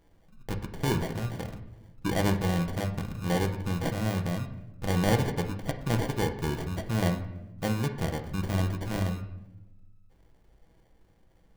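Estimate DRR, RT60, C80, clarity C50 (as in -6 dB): 4.0 dB, 0.95 s, 12.5 dB, 10.0 dB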